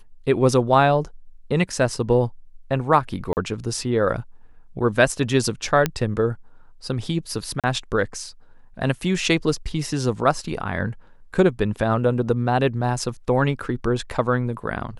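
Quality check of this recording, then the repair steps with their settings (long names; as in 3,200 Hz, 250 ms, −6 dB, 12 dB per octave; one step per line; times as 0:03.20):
0:03.33–0:03.37: drop-out 39 ms
0:05.86: click −6 dBFS
0:07.60–0:07.64: drop-out 37 ms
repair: click removal
repair the gap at 0:03.33, 39 ms
repair the gap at 0:07.60, 37 ms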